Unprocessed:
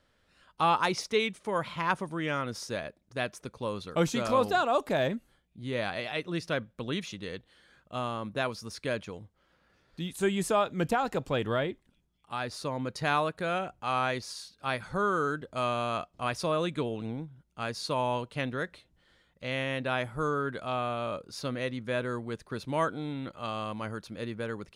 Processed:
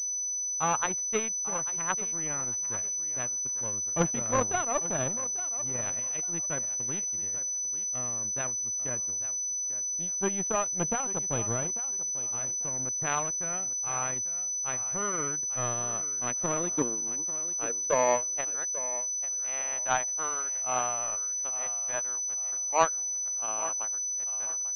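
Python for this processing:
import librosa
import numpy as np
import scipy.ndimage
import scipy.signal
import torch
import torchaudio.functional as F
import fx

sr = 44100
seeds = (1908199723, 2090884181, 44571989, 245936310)

p1 = fx.filter_sweep_highpass(x, sr, from_hz=95.0, to_hz=780.0, start_s=15.1, end_s=18.62, q=3.5)
p2 = fx.power_curve(p1, sr, exponent=2.0)
p3 = fx.air_absorb(p2, sr, metres=62.0)
p4 = p3 + fx.echo_thinned(p3, sr, ms=843, feedback_pct=25, hz=200.0, wet_db=-14, dry=0)
p5 = fx.pwm(p4, sr, carrier_hz=6000.0)
y = p5 * librosa.db_to_amplitude(4.5)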